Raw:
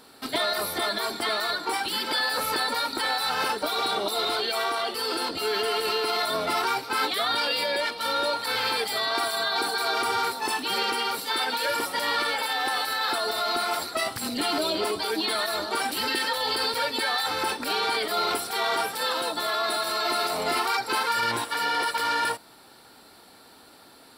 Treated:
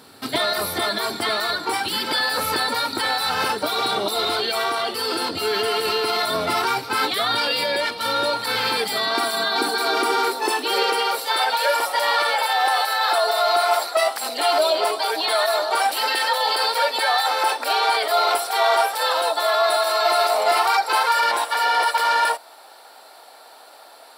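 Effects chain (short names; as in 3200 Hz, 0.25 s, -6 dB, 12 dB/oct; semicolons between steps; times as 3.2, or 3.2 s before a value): crackle 220/s -54 dBFS; high-pass sweep 98 Hz -> 650 Hz, 7.94–11.49; gain +4 dB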